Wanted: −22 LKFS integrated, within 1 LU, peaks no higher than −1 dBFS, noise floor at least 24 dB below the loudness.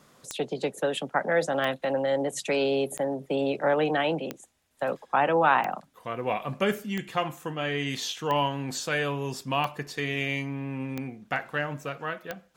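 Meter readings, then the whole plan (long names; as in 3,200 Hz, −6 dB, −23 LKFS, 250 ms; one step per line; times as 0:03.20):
number of clicks 10; integrated loudness −28.5 LKFS; sample peak −8.5 dBFS; target loudness −22.0 LKFS
→ click removal
level +6.5 dB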